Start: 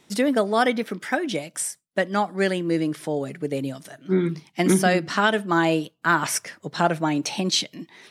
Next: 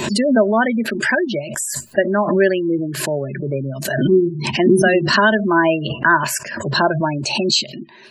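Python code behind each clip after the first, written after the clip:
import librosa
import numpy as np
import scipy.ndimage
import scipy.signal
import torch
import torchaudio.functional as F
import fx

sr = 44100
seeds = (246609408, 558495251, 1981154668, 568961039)

y = fx.spec_gate(x, sr, threshold_db=-20, keep='strong')
y = fx.ripple_eq(y, sr, per_octave=1.4, db=12)
y = fx.pre_swell(y, sr, db_per_s=47.0)
y = y * librosa.db_to_amplitude(3.5)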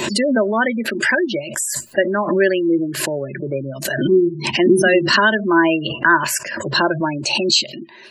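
y = fx.low_shelf(x, sr, hz=420.0, db=-7.0)
y = fx.small_body(y, sr, hz=(330.0, 530.0, 2000.0, 2800.0), ring_ms=40, db=6)
y = fx.dynamic_eq(y, sr, hz=680.0, q=2.3, threshold_db=-32.0, ratio=4.0, max_db=-5)
y = y * librosa.db_to_amplitude(1.5)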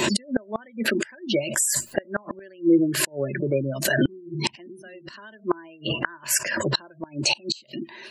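y = fx.gate_flip(x, sr, shuts_db=-9.0, range_db=-30)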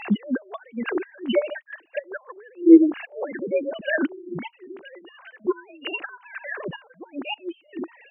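y = fx.sine_speech(x, sr)
y = y * librosa.db_to_amplitude(1.5)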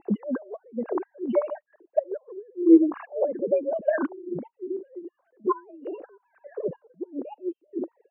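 y = fx.envelope_lowpass(x, sr, base_hz=320.0, top_hz=1100.0, q=5.0, full_db=-19.0, direction='up')
y = y * librosa.db_to_amplitude(-4.5)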